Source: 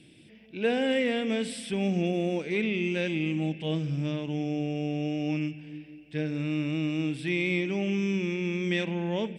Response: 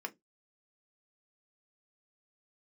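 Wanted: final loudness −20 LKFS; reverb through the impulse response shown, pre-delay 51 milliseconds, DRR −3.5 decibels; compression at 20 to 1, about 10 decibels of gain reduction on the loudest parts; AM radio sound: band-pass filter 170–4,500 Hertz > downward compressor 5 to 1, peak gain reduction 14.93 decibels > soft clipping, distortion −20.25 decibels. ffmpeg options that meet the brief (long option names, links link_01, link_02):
-filter_complex "[0:a]acompressor=threshold=-31dB:ratio=20,asplit=2[link_01][link_02];[1:a]atrim=start_sample=2205,adelay=51[link_03];[link_02][link_03]afir=irnorm=-1:irlink=0,volume=3dB[link_04];[link_01][link_04]amix=inputs=2:normalize=0,highpass=170,lowpass=4500,acompressor=threshold=-41dB:ratio=5,asoftclip=threshold=-36dB,volume=24.5dB"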